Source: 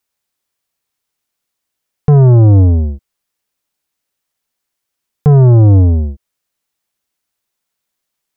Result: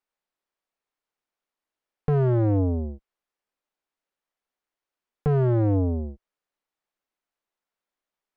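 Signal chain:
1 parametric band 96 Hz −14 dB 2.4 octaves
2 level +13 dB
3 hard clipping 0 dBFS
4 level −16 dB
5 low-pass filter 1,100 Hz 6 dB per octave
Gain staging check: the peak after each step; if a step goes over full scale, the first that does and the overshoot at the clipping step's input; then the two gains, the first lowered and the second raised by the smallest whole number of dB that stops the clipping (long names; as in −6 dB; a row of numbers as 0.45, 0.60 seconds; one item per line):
−7.0, +6.0, 0.0, −16.0, −16.0 dBFS
step 2, 6.0 dB
step 2 +7 dB, step 4 −10 dB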